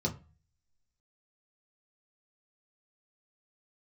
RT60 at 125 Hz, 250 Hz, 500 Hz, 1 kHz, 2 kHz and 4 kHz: 0.60, 0.40, 0.30, 0.35, 0.30, 0.25 seconds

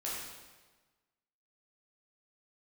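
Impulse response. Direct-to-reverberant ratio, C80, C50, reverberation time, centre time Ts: −7.0 dB, 1.5 dB, −1.0 dB, 1.3 s, 84 ms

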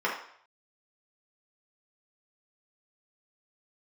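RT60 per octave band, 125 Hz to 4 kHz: 0.55, 0.50, 0.60, 0.65, 0.60, 0.60 seconds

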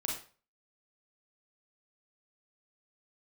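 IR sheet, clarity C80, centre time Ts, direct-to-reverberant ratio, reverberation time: 9.5 dB, 37 ms, −2.0 dB, 0.40 s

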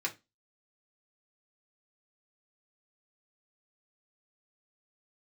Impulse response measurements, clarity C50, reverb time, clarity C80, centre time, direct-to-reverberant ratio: 17.5 dB, 0.20 s, 26.5 dB, 9 ms, −1.0 dB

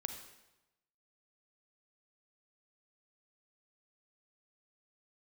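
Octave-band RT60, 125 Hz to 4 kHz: 1.1, 1.0, 1.0, 1.0, 0.90, 0.85 seconds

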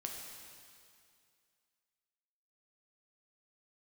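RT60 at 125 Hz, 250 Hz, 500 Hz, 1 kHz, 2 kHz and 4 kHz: 2.3, 2.3, 2.3, 2.3, 2.3, 2.3 seconds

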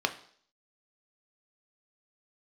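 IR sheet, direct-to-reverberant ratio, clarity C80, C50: 6.0 dB, 17.5 dB, 14.0 dB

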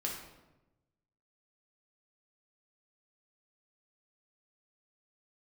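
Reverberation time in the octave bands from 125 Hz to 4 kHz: 1.5, 1.2, 1.1, 0.95, 0.80, 0.65 seconds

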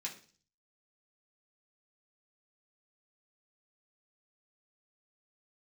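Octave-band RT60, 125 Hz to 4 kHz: 0.70, 0.55, 0.45, 0.40, 0.40, 0.55 seconds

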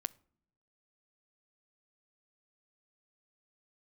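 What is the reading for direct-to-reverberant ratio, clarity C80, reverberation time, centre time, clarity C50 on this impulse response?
18.5 dB, 28.0 dB, non-exponential decay, 1 ms, 24.0 dB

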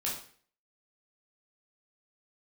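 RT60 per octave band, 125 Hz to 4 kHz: 0.50, 0.50, 0.50, 0.45, 0.50, 0.45 seconds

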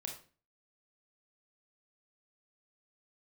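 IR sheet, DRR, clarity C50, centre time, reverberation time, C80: 1.0 dB, 7.0 dB, 23 ms, 0.40 s, 12.0 dB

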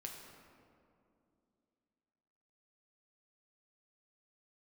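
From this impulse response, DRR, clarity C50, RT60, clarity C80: 0.0 dB, 3.0 dB, 2.6 s, 4.5 dB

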